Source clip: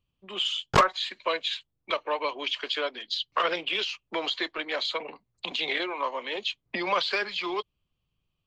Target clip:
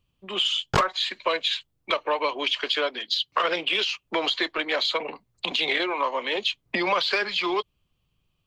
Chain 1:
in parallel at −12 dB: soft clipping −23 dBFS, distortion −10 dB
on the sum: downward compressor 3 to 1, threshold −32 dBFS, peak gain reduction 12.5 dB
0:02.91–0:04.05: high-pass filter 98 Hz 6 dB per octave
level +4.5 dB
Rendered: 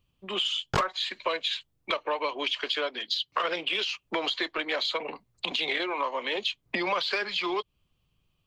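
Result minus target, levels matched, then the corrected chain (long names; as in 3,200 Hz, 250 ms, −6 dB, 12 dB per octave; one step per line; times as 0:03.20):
downward compressor: peak gain reduction +4.5 dB
in parallel at −12 dB: soft clipping −23 dBFS, distortion −10 dB
on the sum: downward compressor 3 to 1, threshold −25 dBFS, peak gain reduction 8 dB
0:02.91–0:04.05: high-pass filter 98 Hz 6 dB per octave
level +4.5 dB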